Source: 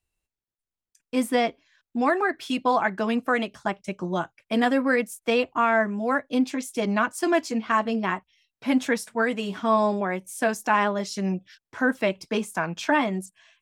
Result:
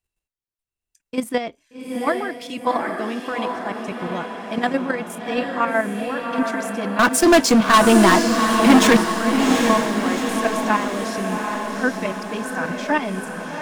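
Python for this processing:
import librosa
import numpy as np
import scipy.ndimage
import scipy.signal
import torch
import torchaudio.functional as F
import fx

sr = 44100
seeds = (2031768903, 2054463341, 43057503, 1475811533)

y = fx.level_steps(x, sr, step_db=10)
y = fx.leveller(y, sr, passes=5, at=(6.99, 8.97))
y = fx.echo_diffused(y, sr, ms=781, feedback_pct=56, wet_db=-4.0)
y = F.gain(torch.from_numpy(y), 3.0).numpy()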